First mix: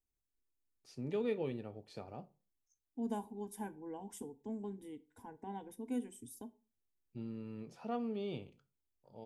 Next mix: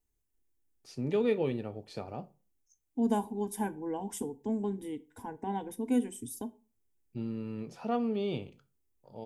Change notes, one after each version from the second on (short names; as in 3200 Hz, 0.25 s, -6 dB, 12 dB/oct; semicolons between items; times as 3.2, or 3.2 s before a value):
first voice +7.5 dB; second voice +10.0 dB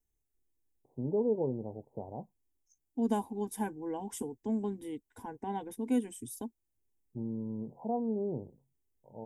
first voice: add steep low-pass 990 Hz 96 dB/oct; reverb: off